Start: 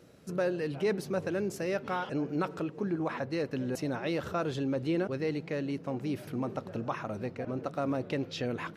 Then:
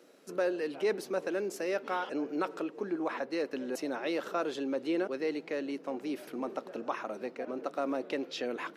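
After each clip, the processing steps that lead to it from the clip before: HPF 270 Hz 24 dB/oct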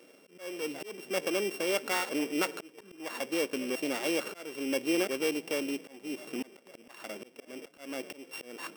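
sample sorter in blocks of 16 samples; auto swell 0.393 s; gain +2.5 dB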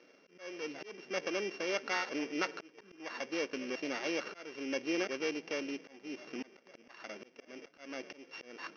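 rippled Chebyshev low-pass 6300 Hz, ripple 6 dB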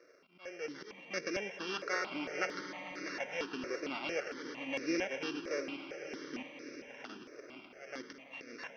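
on a send: swelling echo 0.11 s, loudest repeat 5, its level -15.5 dB; on the sum: step phaser 4.4 Hz 840–3100 Hz; gain +2 dB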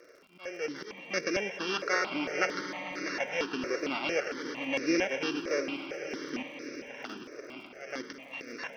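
crackle 75/s -57 dBFS; gain +6.5 dB

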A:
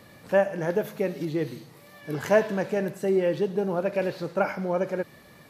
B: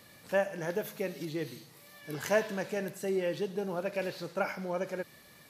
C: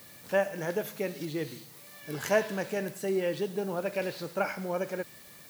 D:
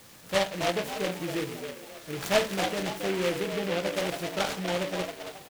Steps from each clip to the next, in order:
high shelf 2100 Hz +10.5 dB; gain -8.5 dB
added noise blue -56 dBFS; gain +2 dB
frequency-shifting echo 0.273 s, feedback 36%, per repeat +100 Hz, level -7 dB; shoebox room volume 160 m³, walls furnished, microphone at 0.7 m; noise-modulated delay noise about 2000 Hz, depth 0.13 ms

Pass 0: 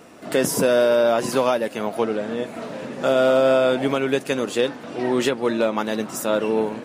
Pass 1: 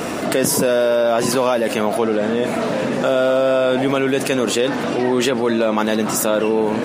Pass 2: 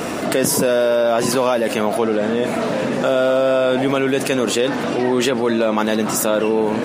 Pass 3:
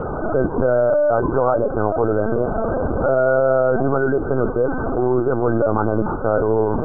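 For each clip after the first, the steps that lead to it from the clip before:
fast leveller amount 70%
nothing audible
brick-wall FIR low-pass 1600 Hz; LPC vocoder at 8 kHz pitch kept

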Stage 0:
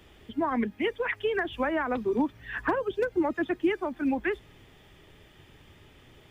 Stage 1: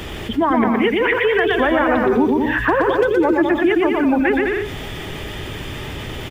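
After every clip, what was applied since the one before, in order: on a send: bouncing-ball echo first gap 0.12 s, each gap 0.7×, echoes 5; on the sum: fast leveller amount 50%; gain +7.5 dB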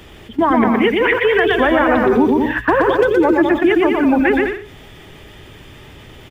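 gate -18 dBFS, range -13 dB; gain +2.5 dB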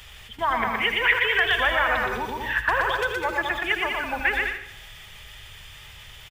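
passive tone stack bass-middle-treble 10-0-10; feedback echo 78 ms, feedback 54%, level -13 dB; gain +2.5 dB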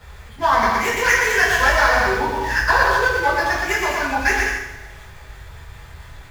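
median filter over 15 samples; two-slope reverb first 0.42 s, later 1.7 s, from -18 dB, DRR -7.5 dB

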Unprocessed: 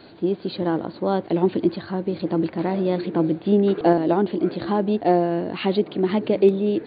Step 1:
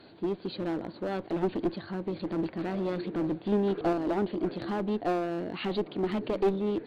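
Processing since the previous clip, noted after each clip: one-sided clip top -20 dBFS; gain -7 dB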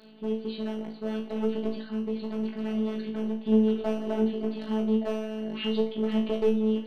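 robotiser 217 Hz; flutter echo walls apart 3.1 m, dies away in 0.4 s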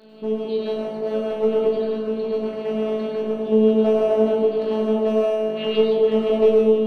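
bell 500 Hz +7.5 dB 1.9 oct; plate-style reverb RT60 1 s, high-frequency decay 0.75×, pre-delay 85 ms, DRR -2 dB

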